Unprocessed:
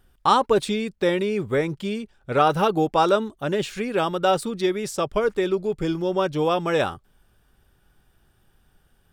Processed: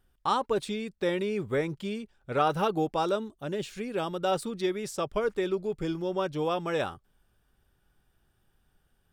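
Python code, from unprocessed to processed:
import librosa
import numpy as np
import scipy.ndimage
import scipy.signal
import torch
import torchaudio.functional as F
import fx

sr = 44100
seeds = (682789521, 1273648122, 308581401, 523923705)

y = fx.rider(x, sr, range_db=10, speed_s=2.0)
y = fx.peak_eq(y, sr, hz=1400.0, db=-4.0, octaves=2.2, at=(2.94, 4.32))
y = F.gain(torch.from_numpy(y), -7.5).numpy()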